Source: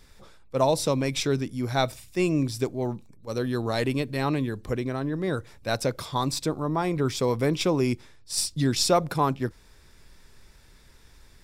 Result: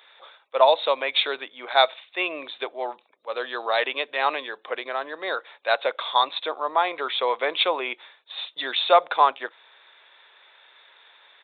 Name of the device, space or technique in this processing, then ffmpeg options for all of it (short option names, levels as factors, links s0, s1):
musical greeting card: -af "aresample=8000,aresample=44100,highpass=f=600:w=0.5412,highpass=f=600:w=1.3066,equalizer=f=3600:t=o:w=0.26:g=6.5,volume=2.51"